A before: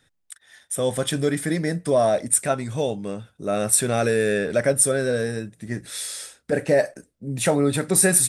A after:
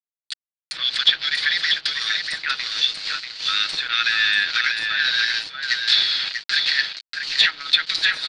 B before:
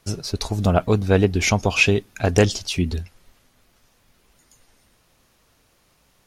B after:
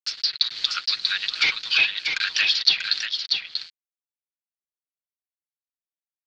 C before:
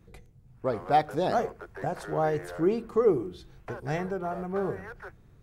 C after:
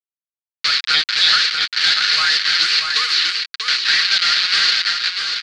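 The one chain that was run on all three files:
level-crossing sampler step -33 dBFS; compressor 2.5:1, threshold -26 dBFS; dynamic EQ 3500 Hz, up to +6 dB, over -52 dBFS, Q 5.5; steep high-pass 1400 Hz 48 dB/oct; sample leveller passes 3; treble ducked by the level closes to 2300 Hz, closed at -19 dBFS; ladder low-pass 4700 Hz, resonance 75%; on a send: echo 0.639 s -5.5 dB; on the sum: AGC gain up to 5 dB; comb 6.3 ms, depth 42%; normalise peaks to -2 dBFS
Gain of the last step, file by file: +10.5, +6.5, +21.5 dB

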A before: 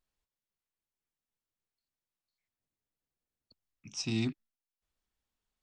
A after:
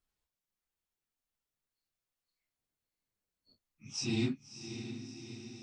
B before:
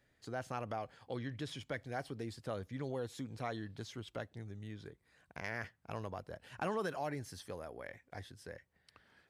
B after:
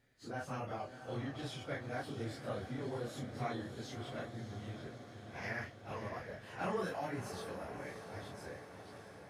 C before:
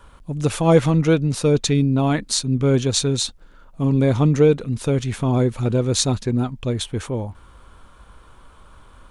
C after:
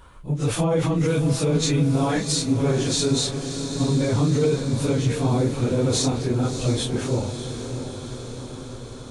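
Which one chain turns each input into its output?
phase scrambler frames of 0.1 s; limiter -13.5 dBFS; diffused feedback echo 0.639 s, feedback 67%, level -9 dB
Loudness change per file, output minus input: -3.0, +0.5, -3.0 LU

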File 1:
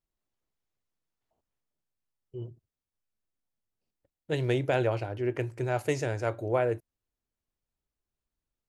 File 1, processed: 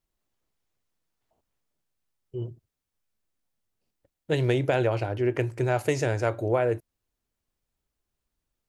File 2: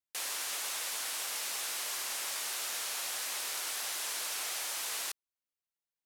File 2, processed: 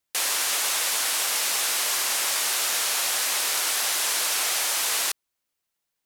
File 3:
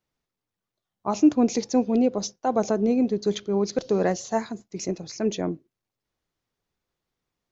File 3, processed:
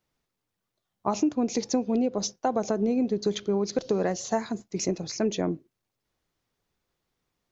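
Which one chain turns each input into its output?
compressor 6:1, threshold -25 dBFS; normalise peaks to -12 dBFS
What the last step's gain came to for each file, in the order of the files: +5.5, +12.0, +3.5 dB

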